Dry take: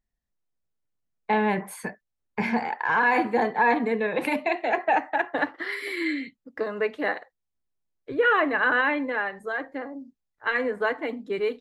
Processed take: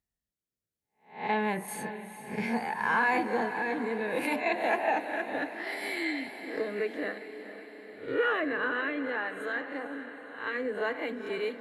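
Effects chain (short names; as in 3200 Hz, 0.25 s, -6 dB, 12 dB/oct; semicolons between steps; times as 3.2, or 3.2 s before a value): spectral swells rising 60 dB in 0.39 s; HPF 57 Hz; high shelf 6000 Hz +7 dB; in parallel at -1 dB: compressor, threshold -29 dBFS, peak gain reduction 13.5 dB; on the sum: rotary speaker horn 0.6 Hz; on a send: diffused feedback echo 0.455 s, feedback 62%, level -11.5 dB; on the sum: gain -7.5 dB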